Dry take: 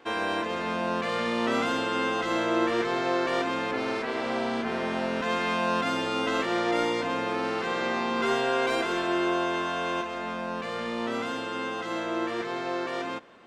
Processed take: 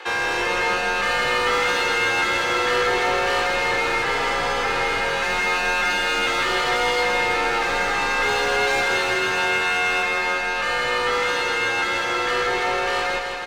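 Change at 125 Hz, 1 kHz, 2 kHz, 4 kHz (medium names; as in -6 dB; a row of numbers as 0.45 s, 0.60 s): +2.5 dB, +7.0 dB, +12.0 dB, +10.0 dB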